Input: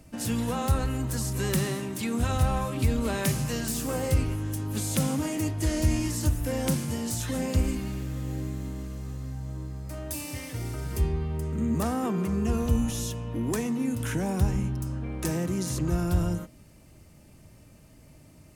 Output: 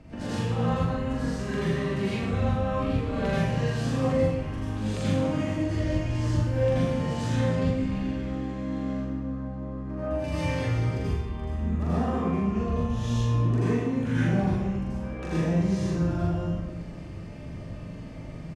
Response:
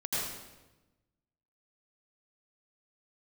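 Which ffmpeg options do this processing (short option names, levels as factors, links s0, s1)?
-filter_complex "[0:a]asetnsamples=n=441:p=0,asendcmd='8.9 lowpass f 1400;10.24 lowpass f 3300',lowpass=3100,acompressor=threshold=0.0126:ratio=6,asplit=2[s0][s1];[s1]adelay=42,volume=0.794[s2];[s0][s2]amix=inputs=2:normalize=0[s3];[1:a]atrim=start_sample=2205[s4];[s3][s4]afir=irnorm=-1:irlink=0,volume=1.78"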